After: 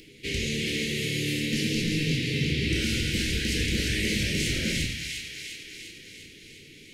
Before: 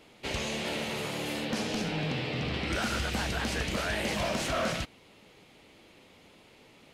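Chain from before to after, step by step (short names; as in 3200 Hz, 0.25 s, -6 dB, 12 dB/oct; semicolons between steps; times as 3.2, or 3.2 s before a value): elliptic band-stop 420–2000 Hz, stop band 70 dB; upward compressor, threshold -52 dBFS; thin delay 0.35 s, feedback 62%, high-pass 1700 Hz, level -4 dB; reverb RT60 0.65 s, pre-delay 6 ms, DRR 1.5 dB; gain +3.5 dB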